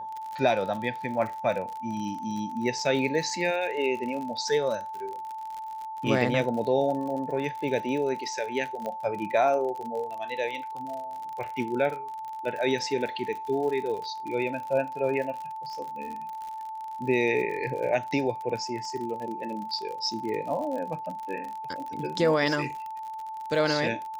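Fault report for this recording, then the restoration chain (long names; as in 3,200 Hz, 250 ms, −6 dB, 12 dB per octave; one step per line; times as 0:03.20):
surface crackle 55 per second −34 dBFS
whistle 880 Hz −34 dBFS
0:08.86: click −21 dBFS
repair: click removal
notch filter 880 Hz, Q 30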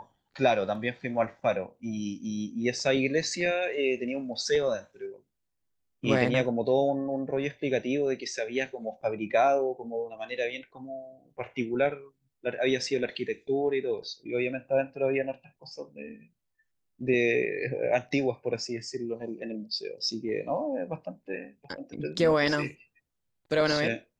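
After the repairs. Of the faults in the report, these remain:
none of them is left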